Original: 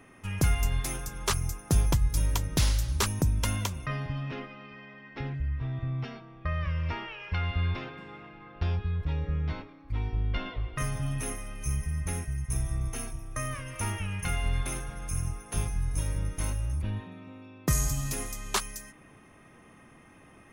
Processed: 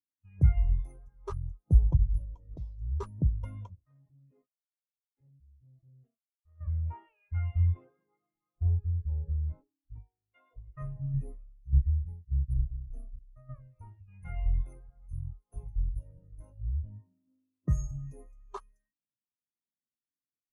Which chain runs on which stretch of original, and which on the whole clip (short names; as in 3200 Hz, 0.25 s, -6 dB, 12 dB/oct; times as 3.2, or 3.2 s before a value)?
2.24–2.81 LPF 11000 Hz + bell 1600 Hz -5 dB 0.21 oct + compressor 8:1, threshold -25 dBFS
3.75–6.61 expander -38 dBFS + tube stage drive 39 dB, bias 0.8
9.98–10.51 HPF 800 Hz 6 dB/oct + high shelf 2100 Hz -4 dB
11.14–14.08 low shelf 250 Hz +5.5 dB + tremolo saw down 1.7 Hz, depth 70%
whole clip: notches 50/100/150/200 Hz; dynamic EQ 590 Hz, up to +7 dB, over -51 dBFS, Q 0.73; spectral expander 2.5:1